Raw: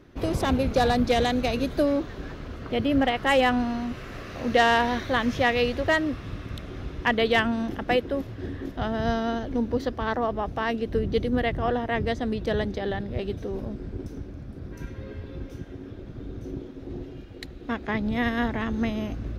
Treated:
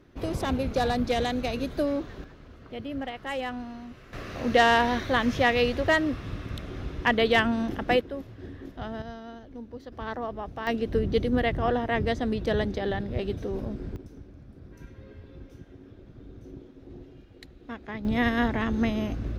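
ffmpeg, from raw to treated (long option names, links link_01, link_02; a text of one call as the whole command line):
ffmpeg -i in.wav -af "asetnsamples=nb_out_samples=441:pad=0,asendcmd='2.24 volume volume -11.5dB;4.13 volume volume 0dB;8.01 volume volume -7.5dB;9.02 volume volume -15dB;9.92 volume volume -7dB;10.67 volume volume 0dB;13.96 volume volume -9dB;18.05 volume volume 1dB',volume=-4dB" out.wav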